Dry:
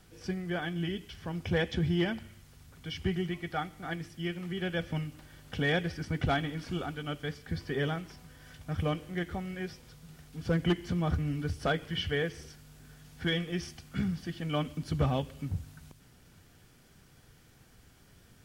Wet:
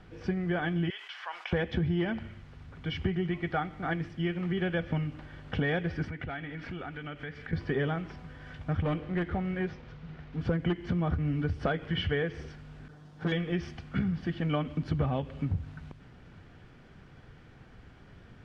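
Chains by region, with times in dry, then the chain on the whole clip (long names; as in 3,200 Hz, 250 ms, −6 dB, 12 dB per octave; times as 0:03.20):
0:00.90–0:01.53: high-pass filter 880 Hz 24 dB per octave + envelope flattener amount 50%
0:06.08–0:07.53: parametric band 2,000 Hz +8.5 dB 1.1 octaves + notch filter 1,100 Hz, Q 13 + downward compressor 4 to 1, threshold −44 dBFS
0:08.82–0:10.41: hard clipping −28.5 dBFS + linearly interpolated sample-rate reduction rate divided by 4×
0:12.88–0:13.32: lower of the sound and its delayed copy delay 6.6 ms + high-pass filter 160 Hz 6 dB per octave + parametric band 2,300 Hz −10.5 dB 1.2 octaves
whole clip: low-pass filter 2,400 Hz 12 dB per octave; downward compressor 5 to 1, threshold −33 dBFS; level +7 dB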